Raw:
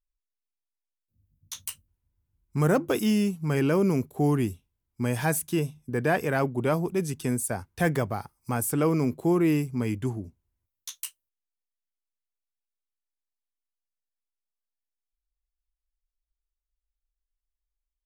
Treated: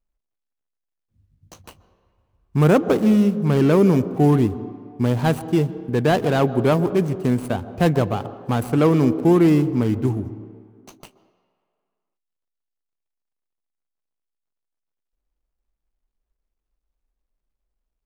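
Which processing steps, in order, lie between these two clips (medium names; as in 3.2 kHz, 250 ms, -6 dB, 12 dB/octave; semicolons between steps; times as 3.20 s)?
median filter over 25 samples; on a send: reverberation RT60 2.2 s, pre-delay 122 ms, DRR 15 dB; on the sum: trim +8 dB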